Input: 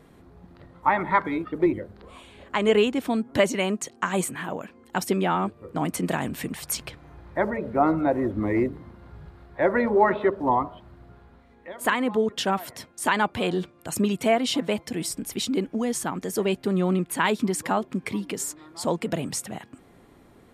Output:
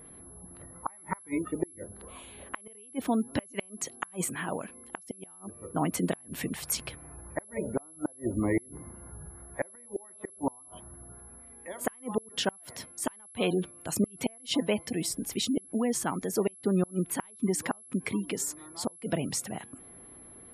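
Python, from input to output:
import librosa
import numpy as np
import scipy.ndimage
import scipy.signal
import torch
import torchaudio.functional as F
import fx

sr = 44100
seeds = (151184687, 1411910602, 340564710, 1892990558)

y = fx.gate_flip(x, sr, shuts_db=-14.0, range_db=-36)
y = fx.spec_gate(y, sr, threshold_db=-30, keep='strong')
y = y + 10.0 ** (-47.0 / 20.0) * np.sin(2.0 * np.pi * 11000.0 * np.arange(len(y)) / sr)
y = y * 10.0 ** (-2.0 / 20.0)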